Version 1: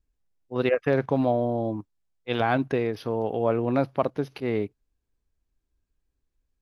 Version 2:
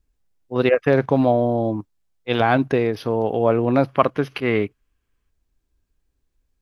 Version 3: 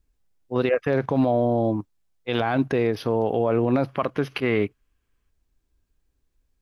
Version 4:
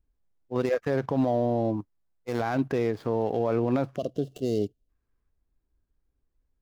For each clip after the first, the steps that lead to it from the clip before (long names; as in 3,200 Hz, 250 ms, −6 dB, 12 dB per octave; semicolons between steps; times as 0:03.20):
gain on a spectral selection 0:03.88–0:05.30, 1,000–3,400 Hz +7 dB; level +6 dB
brickwall limiter −11.5 dBFS, peak gain reduction 10 dB
running median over 15 samples; gain on a spectral selection 0:03.97–0:04.89, 750–2,700 Hz −23 dB; level −4 dB